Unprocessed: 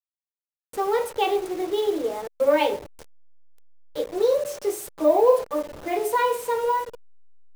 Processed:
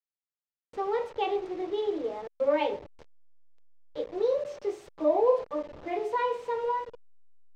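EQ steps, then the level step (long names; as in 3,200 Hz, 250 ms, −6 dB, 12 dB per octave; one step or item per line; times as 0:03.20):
high-frequency loss of the air 170 metres
parametric band 1,500 Hz −3 dB 0.24 octaves
−5.5 dB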